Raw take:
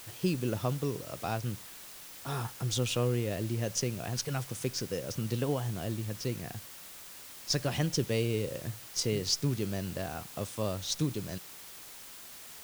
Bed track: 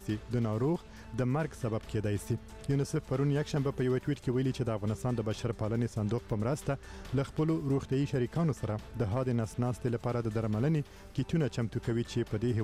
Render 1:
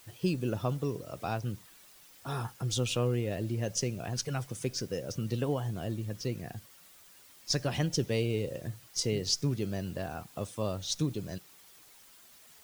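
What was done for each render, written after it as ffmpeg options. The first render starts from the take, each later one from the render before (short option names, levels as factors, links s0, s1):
-af "afftdn=nr=10:nf=-48"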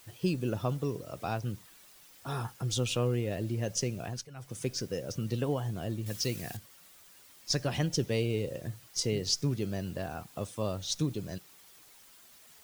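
-filter_complex "[0:a]asettb=1/sr,asplit=3[s0][s1][s2];[s0]atrim=end=6.064[s3];[s1]atrim=start=6.06:end=6.57,asetpts=PTS-STARTPTS,afade=t=in:d=0.004:c=qsin,afade=t=out:st=0.506:d=0.004:c=qsin,highshelf=f=2100:g=11.5[s4];[s2]atrim=start=6.566[s5];[s3][s4]acrossfade=d=0.004:c1=hsin:c2=qsin[s6];[s6][s5]acrossfade=d=0.004:c1=qsin:c2=hsin,asplit=3[s7][s8][s9];[s7]atrim=end=4.28,asetpts=PTS-STARTPTS,afade=t=out:st=4.04:d=0.24:silence=0.188365[s10];[s8]atrim=start=4.28:end=4.35,asetpts=PTS-STARTPTS,volume=0.188[s11];[s9]atrim=start=4.35,asetpts=PTS-STARTPTS,afade=t=in:d=0.24:silence=0.188365[s12];[s10][s11][s12]concat=n=3:v=0:a=1"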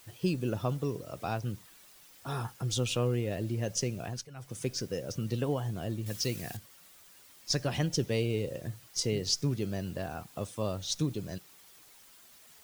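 -af anull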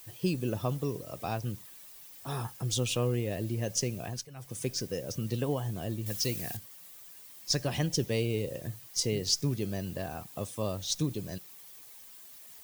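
-af "highshelf=f=10000:g=9.5,bandreject=f=1400:w=11"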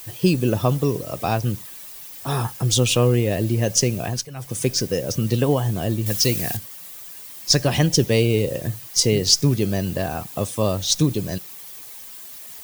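-af "volume=3.98"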